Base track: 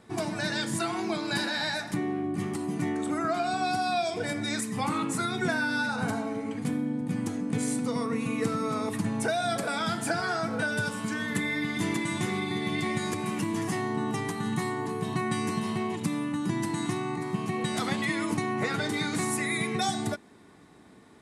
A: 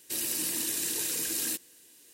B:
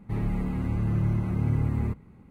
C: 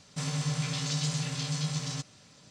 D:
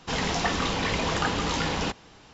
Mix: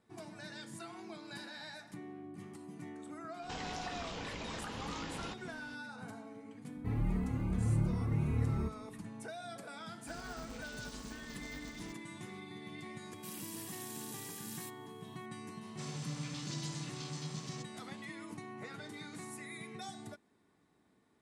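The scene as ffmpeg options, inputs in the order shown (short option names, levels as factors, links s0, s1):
-filter_complex "[3:a]asplit=2[s0][s1];[0:a]volume=0.133[s2];[4:a]acompressor=threshold=0.02:ratio=6:attack=3.2:release=140:knee=1:detection=peak[s3];[2:a]asplit=2[s4][s5];[s5]adelay=2.8,afreqshift=2.7[s6];[s4][s6]amix=inputs=2:normalize=1[s7];[s0]aeval=exprs='val(0)*sgn(sin(2*PI*100*n/s))':c=same[s8];[1:a]aeval=exprs='val(0)+0.00501*sin(2*PI*3300*n/s)':c=same[s9];[s3]atrim=end=2.33,asetpts=PTS-STARTPTS,volume=0.501,afade=t=in:d=0.004:c=hsin,afade=t=out:st=2.326:d=0.004:c=hsin,adelay=3420[s10];[s7]atrim=end=2.3,asetpts=PTS-STARTPTS,volume=0.668,afade=t=in:d=0.004:c=hsin,afade=t=out:st=2.296:d=0.004:c=hsin,adelay=6750[s11];[s8]atrim=end=2.5,asetpts=PTS-STARTPTS,volume=0.133,afade=t=in:d=0.004:c=hsin,afade=t=out:st=2.496:d=0.004:c=hsin,adelay=9910[s12];[s9]atrim=end=2.13,asetpts=PTS-STARTPTS,volume=0.15,afade=t=in:d=0.004:c=hsin,afade=t=out:st=2.126:d=0.004:c=hsin,adelay=13130[s13];[s1]atrim=end=2.5,asetpts=PTS-STARTPTS,volume=0.282,afade=t=in:d=0.004:c=hsin,afade=t=out:st=2.496:d=0.004:c=hsin,adelay=15610[s14];[s2][s10][s11][s12][s13][s14]amix=inputs=6:normalize=0"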